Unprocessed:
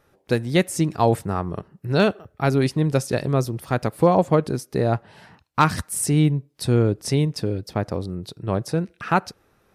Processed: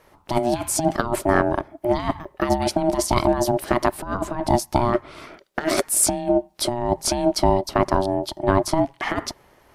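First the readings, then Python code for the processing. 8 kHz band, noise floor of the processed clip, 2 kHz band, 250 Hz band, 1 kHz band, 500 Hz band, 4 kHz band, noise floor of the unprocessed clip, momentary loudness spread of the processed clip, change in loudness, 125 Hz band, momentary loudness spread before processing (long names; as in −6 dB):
+7.0 dB, −57 dBFS, +0.5 dB, −0.5 dB, +2.5 dB, +1.0 dB, +3.0 dB, −64 dBFS, 7 LU, +0.5 dB, −7.5 dB, 9 LU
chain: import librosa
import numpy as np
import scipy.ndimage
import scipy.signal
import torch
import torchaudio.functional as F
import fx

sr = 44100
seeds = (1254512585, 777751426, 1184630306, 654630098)

y = fx.over_compress(x, sr, threshold_db=-22.0, ratio=-0.5)
y = y * np.sin(2.0 * np.pi * 480.0 * np.arange(len(y)) / sr)
y = F.gain(torch.from_numpy(y), 6.5).numpy()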